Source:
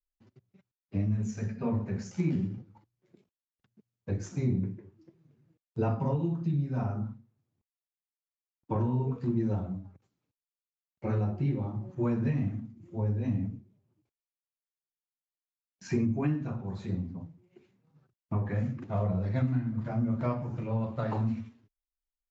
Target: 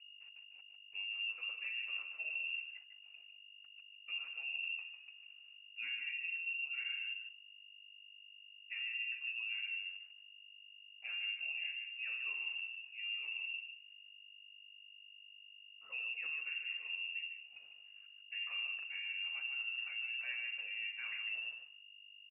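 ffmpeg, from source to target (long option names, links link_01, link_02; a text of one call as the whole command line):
ffmpeg -i in.wav -af "areverse,acompressor=threshold=-39dB:ratio=6,areverse,aeval=exprs='val(0)+0.002*(sin(2*PI*50*n/s)+sin(2*PI*2*50*n/s)/2+sin(2*PI*3*50*n/s)/3+sin(2*PI*4*50*n/s)/4+sin(2*PI*5*50*n/s)/5)':channel_layout=same,aecho=1:1:150:0.422,lowpass=frequency=2500:width_type=q:width=0.5098,lowpass=frequency=2500:width_type=q:width=0.6013,lowpass=frequency=2500:width_type=q:width=0.9,lowpass=frequency=2500:width_type=q:width=2.563,afreqshift=-2900,volume=-1.5dB" out.wav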